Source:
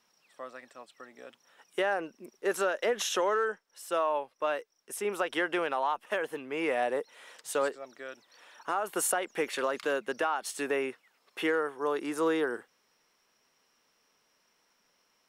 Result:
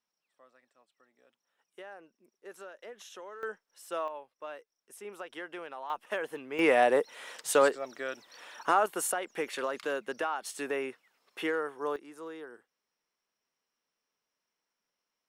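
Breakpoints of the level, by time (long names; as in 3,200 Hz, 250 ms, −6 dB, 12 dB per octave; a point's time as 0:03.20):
−18 dB
from 0:03.43 −5.5 dB
from 0:04.08 −12 dB
from 0:05.90 −2.5 dB
from 0:06.59 +6 dB
from 0:08.86 −3 dB
from 0:11.96 −15.5 dB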